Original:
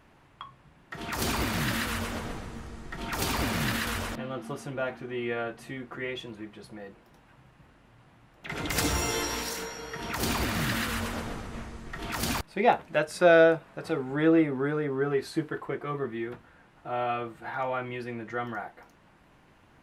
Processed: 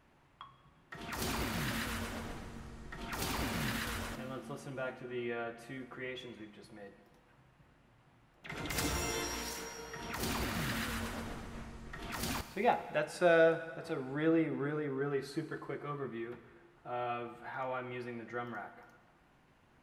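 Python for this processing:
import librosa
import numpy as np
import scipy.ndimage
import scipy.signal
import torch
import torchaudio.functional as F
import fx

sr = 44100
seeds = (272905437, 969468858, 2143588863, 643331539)

y = fx.rev_plate(x, sr, seeds[0], rt60_s=1.5, hf_ratio=1.0, predelay_ms=0, drr_db=10.0)
y = F.gain(torch.from_numpy(y), -8.0).numpy()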